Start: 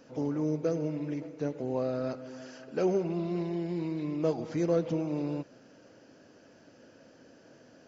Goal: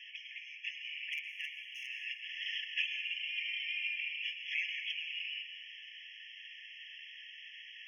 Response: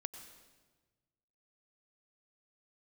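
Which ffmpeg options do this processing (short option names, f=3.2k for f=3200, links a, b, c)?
-filter_complex "[0:a]asettb=1/sr,asplit=3[a][b][c];[a]atrim=end=2.844[d];[b]atrim=start=2.84:end=3.96,asetpts=PTS-STARTPTS,afade=t=in:d=0.004:c=qsin,afade=t=out:st=1.116:d=0.004:c=qsin,aecho=1:1:3.1:0.8,atrim=end_sample=49392[e];[c]atrim=start=3.956[f];[d][e]acrossfade=d=0.004:c1=hsin:c2=qsin[g];[g][f]acrossfade=d=0.004:c1=qsin:c2=hsin,asplit=2[h][i];[i]acompressor=threshold=-38dB:ratio=5,volume=1dB[j];[h][j]amix=inputs=2:normalize=0,highpass=f=580:t=q:w=0.5412,highpass=f=580:t=q:w=1.307,lowpass=f=3k:t=q:w=0.5176,lowpass=f=3k:t=q:w=0.7071,lowpass=f=3k:t=q:w=1.932,afreqshift=170,aexciter=amount=5.3:drive=9.6:freq=2.2k,asettb=1/sr,asplit=3[k][l][m];[k]atrim=end=1.124[n];[l]atrim=start=1.12:end=1.87,asetpts=PTS-STARTPTS,afade=t=in:d=0.004:c=qsin,afade=t=out:st=0.746:d=0.004:c=qsin,aeval=exprs='0.0422*(abs(mod(val(0)/0.0422+3,4)-2)-1)':c=same[o];[m]atrim=start=1.866[p];[n][o]acrossfade=d=0.004:c1=hsin:c2=qsin[q];[q][p]acrossfade=d=0.004:c1=qsin:c2=hsin[r];[1:a]atrim=start_sample=2205,asetrate=36603,aresample=44100[s];[r][s]afir=irnorm=-1:irlink=0,afftfilt=real='re*eq(mod(floor(b*sr/1024/1700),2),1)':imag='im*eq(mod(floor(b*sr/1024/1700),2),1)':win_size=1024:overlap=0.75"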